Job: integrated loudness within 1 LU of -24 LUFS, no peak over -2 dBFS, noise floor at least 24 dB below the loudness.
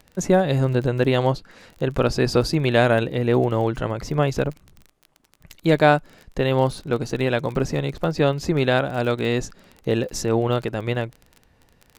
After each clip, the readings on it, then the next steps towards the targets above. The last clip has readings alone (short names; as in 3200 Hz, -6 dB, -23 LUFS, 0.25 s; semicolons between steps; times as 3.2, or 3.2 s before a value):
ticks 28/s; loudness -22.0 LUFS; peak -3.0 dBFS; loudness target -24.0 LUFS
-> de-click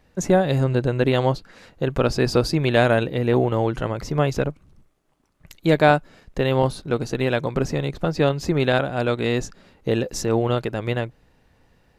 ticks 0/s; loudness -22.0 LUFS; peak -3.0 dBFS; loudness target -24.0 LUFS
-> gain -2 dB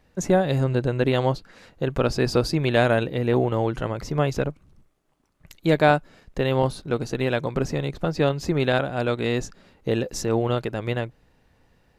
loudness -24.0 LUFS; peak -5.0 dBFS; noise floor -63 dBFS